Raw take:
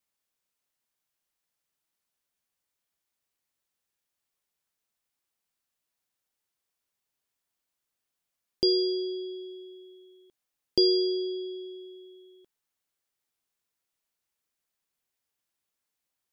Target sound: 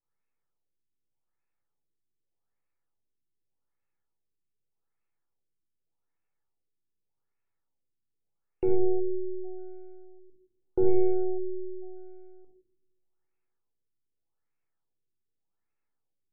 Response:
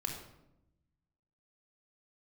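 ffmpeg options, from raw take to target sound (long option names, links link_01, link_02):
-filter_complex "[0:a]aeval=exprs='if(lt(val(0),0),0.447*val(0),val(0))':channel_layout=same[link_01];[1:a]atrim=start_sample=2205[link_02];[link_01][link_02]afir=irnorm=-1:irlink=0,afftfilt=real='re*lt(b*sr/1024,410*pow(2800/410,0.5+0.5*sin(2*PI*0.84*pts/sr)))':imag='im*lt(b*sr/1024,410*pow(2800/410,0.5+0.5*sin(2*PI*0.84*pts/sr)))':win_size=1024:overlap=0.75"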